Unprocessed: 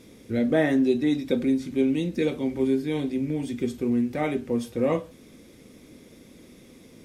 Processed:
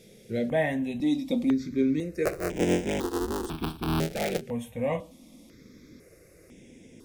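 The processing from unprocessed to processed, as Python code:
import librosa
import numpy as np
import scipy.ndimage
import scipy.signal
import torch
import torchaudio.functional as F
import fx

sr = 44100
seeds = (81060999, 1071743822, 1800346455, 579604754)

y = fx.cycle_switch(x, sr, every=3, mode='inverted', at=(2.25, 4.41))
y = fx.phaser_held(y, sr, hz=2.0, low_hz=280.0, high_hz=4300.0)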